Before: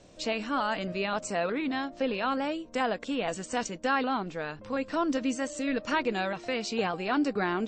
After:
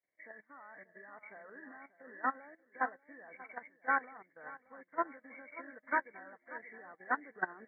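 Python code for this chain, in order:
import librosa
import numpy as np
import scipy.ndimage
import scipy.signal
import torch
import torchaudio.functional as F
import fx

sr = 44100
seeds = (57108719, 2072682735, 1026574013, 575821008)

y = fx.freq_compress(x, sr, knee_hz=1500.0, ratio=4.0)
y = fx.highpass(y, sr, hz=830.0, slope=6)
y = fx.level_steps(y, sr, step_db=10)
y = fx.echo_feedback(y, sr, ms=586, feedback_pct=41, wet_db=-8.0)
y = fx.upward_expand(y, sr, threshold_db=-51.0, expansion=2.5)
y = F.gain(torch.from_numpy(y), 2.5).numpy()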